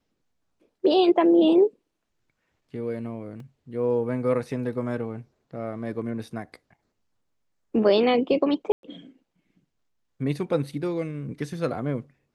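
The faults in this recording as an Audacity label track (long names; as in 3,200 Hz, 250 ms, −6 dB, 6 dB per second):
3.400000	3.400000	drop-out 2.4 ms
8.720000	8.830000	drop-out 112 ms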